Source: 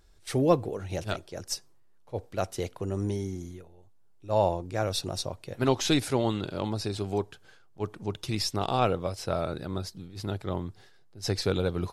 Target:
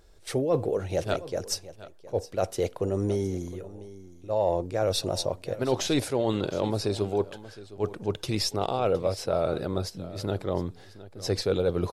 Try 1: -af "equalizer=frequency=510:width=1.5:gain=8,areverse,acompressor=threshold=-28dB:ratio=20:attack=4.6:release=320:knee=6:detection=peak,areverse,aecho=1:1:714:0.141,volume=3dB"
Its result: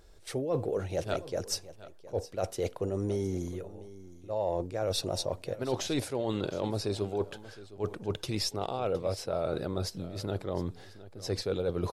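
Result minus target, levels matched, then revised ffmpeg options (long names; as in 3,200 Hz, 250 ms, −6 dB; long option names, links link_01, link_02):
downward compressor: peak gain reduction +6 dB
-af "equalizer=frequency=510:width=1.5:gain=8,areverse,acompressor=threshold=-21.5dB:ratio=20:attack=4.6:release=320:knee=6:detection=peak,areverse,aecho=1:1:714:0.141,volume=3dB"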